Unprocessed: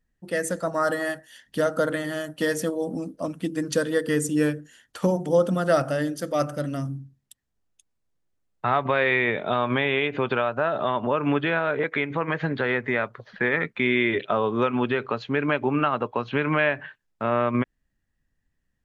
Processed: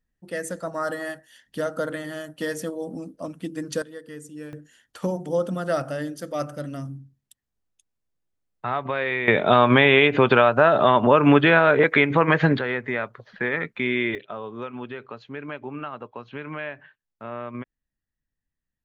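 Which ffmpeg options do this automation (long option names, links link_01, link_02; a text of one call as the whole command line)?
ffmpeg -i in.wav -af "asetnsamples=nb_out_samples=441:pad=0,asendcmd='3.82 volume volume -16dB;4.53 volume volume -4dB;9.28 volume volume 8dB;12.59 volume volume -2dB;14.15 volume volume -11dB',volume=-4dB" out.wav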